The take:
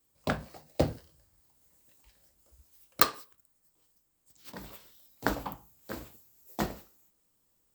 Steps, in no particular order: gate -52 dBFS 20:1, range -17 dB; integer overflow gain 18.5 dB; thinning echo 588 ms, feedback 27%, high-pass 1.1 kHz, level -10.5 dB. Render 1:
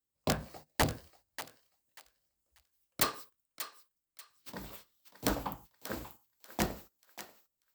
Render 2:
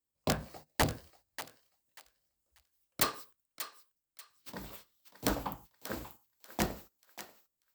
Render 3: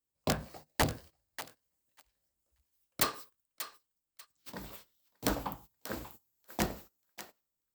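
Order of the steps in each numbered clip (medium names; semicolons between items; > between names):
integer overflow > gate > thinning echo; gate > integer overflow > thinning echo; integer overflow > thinning echo > gate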